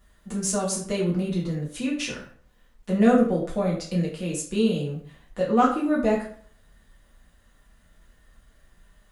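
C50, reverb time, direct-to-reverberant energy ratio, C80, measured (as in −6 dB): 6.0 dB, 0.50 s, −5.0 dB, 9.5 dB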